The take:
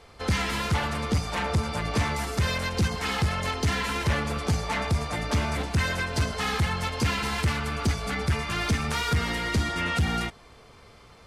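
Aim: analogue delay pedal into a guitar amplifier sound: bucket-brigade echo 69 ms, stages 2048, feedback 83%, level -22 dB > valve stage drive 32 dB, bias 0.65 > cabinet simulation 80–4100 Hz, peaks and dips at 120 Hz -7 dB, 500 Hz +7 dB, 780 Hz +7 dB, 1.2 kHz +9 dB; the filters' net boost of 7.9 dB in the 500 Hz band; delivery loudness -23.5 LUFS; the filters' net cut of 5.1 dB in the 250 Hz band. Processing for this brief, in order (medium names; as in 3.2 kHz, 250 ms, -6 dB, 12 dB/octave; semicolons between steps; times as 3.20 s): peaking EQ 250 Hz -8.5 dB; peaking EQ 500 Hz +6 dB; bucket-brigade echo 69 ms, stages 2048, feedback 83%, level -22 dB; valve stage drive 32 dB, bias 0.65; cabinet simulation 80–4100 Hz, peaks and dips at 120 Hz -7 dB, 500 Hz +7 dB, 780 Hz +7 dB, 1.2 kHz +9 dB; trim +8.5 dB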